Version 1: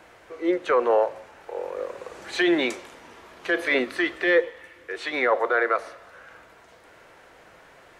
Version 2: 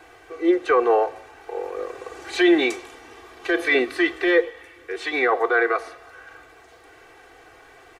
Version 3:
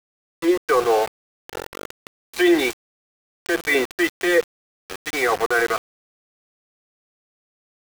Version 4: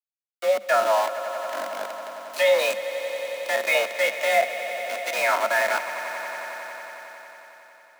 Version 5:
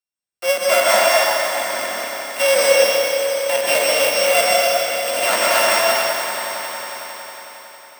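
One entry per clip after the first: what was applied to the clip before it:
comb 2.6 ms, depth 94%
small samples zeroed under -23.5 dBFS
spectral sustain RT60 0.38 s; echo with a slow build-up 91 ms, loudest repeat 5, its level -16 dB; frequency shift +200 Hz; trim -3.5 dB
sorted samples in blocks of 16 samples; plate-style reverb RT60 2.4 s, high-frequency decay 0.9×, pre-delay 115 ms, DRR -4 dB; trim +2.5 dB

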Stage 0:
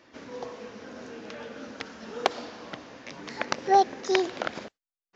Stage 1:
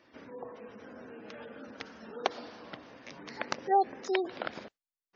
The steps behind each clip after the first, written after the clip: spectral gate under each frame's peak -25 dB strong; trim -5.5 dB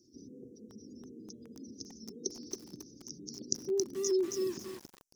Chebyshev band-stop 380–5800 Hz, order 4; peaking EQ 5.5 kHz +13.5 dB 1.6 oct; bit-crushed delay 273 ms, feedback 35%, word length 8-bit, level -3.5 dB; trim +2 dB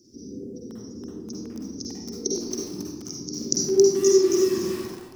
reverberation RT60 1.1 s, pre-delay 44 ms, DRR -3.5 dB; trim +8 dB

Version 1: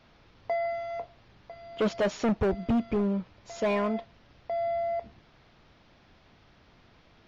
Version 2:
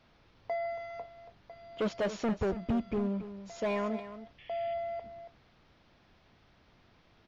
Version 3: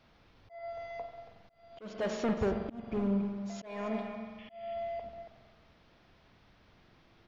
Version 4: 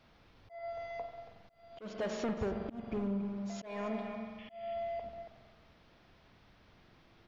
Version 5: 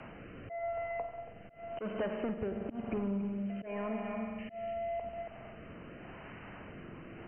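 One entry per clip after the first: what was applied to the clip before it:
painted sound noise, 4.38–4.74 s, 1.7–3.5 kHz -51 dBFS; delay 279 ms -12.5 dB; trim -5 dB
spring tank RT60 1.9 s, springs 45 ms, chirp 35 ms, DRR 6 dB; slow attack 335 ms
compression 2.5:1, threshold -34 dBFS, peak gain reduction 5.5 dB
brick-wall FIR low-pass 3.1 kHz; rotary cabinet horn 0.9 Hz; three bands compressed up and down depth 70%; trim +4.5 dB

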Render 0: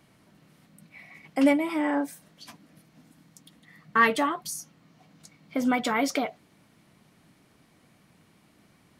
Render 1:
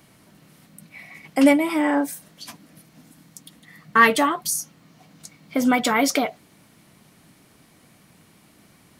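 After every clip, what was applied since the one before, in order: treble shelf 6.4 kHz +8 dB; trim +5.5 dB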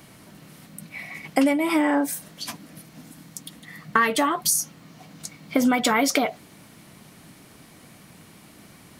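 compression 12:1, threshold -22 dBFS, peak gain reduction 13 dB; trim +5.5 dB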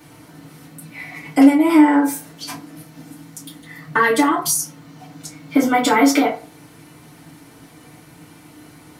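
FDN reverb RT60 0.37 s, low-frequency decay 0.85×, high-frequency decay 0.55×, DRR -7.5 dB; trim -4 dB

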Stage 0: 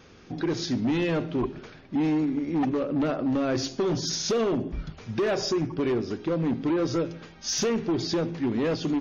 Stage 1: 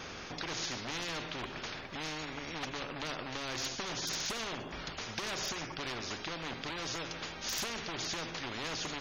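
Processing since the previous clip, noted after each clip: spectrum-flattening compressor 4:1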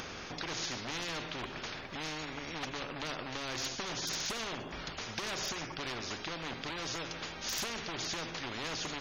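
upward compressor, threshold -41 dBFS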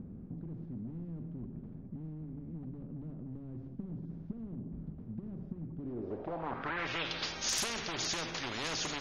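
low-pass sweep 200 Hz -> 10 kHz, 5.74–7.58 s; trim +1 dB

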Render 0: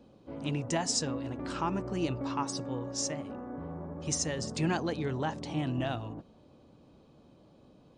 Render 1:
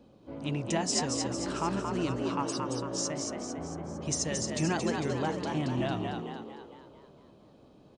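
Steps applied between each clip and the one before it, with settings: frequency-shifting echo 226 ms, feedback 51%, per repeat +56 Hz, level -4.5 dB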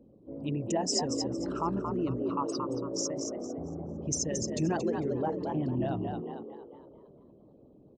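resonances exaggerated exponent 2

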